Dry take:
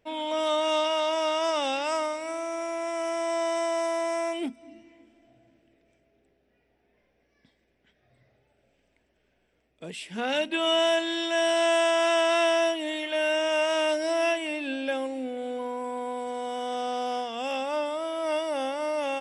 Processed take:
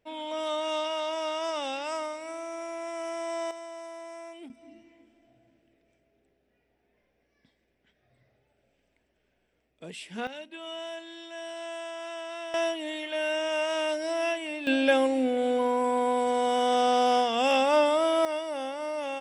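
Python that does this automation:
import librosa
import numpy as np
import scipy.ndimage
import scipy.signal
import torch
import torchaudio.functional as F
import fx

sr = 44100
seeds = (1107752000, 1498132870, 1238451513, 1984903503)

y = fx.gain(x, sr, db=fx.steps((0.0, -5.0), (3.51, -14.0), (4.5, -3.0), (10.27, -15.0), (12.54, -3.5), (14.67, 7.0), (18.25, -4.0)))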